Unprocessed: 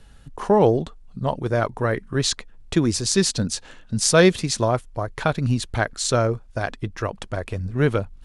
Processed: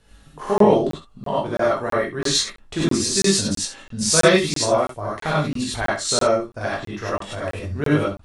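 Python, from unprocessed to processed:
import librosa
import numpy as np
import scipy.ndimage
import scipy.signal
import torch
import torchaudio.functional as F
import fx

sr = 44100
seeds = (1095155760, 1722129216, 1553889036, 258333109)

p1 = fx.low_shelf(x, sr, hz=110.0, db=-8.0)
p2 = p1 + fx.room_early_taps(p1, sr, ms=(20, 66), db=(-6.5, -11.0), dry=0)
p3 = fx.rev_gated(p2, sr, seeds[0], gate_ms=120, shape='rising', drr_db=-7.5)
p4 = fx.buffer_crackle(p3, sr, first_s=0.58, period_s=0.33, block=1024, kind='zero')
y = F.gain(torch.from_numpy(p4), -6.0).numpy()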